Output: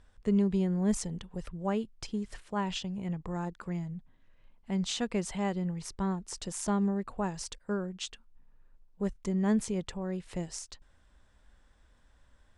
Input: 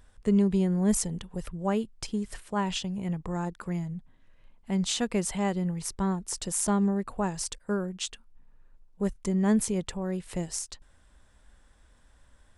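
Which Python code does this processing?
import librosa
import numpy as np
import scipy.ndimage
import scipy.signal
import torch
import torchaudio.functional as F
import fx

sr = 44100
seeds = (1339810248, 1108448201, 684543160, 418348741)

y = scipy.signal.sosfilt(scipy.signal.butter(2, 6800.0, 'lowpass', fs=sr, output='sos'), x)
y = y * librosa.db_to_amplitude(-3.5)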